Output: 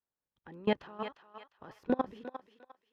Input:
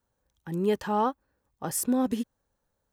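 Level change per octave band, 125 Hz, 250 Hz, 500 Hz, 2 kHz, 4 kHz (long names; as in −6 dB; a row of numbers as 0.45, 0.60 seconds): −10.5, −8.5, −6.0, −2.0, −4.0 decibels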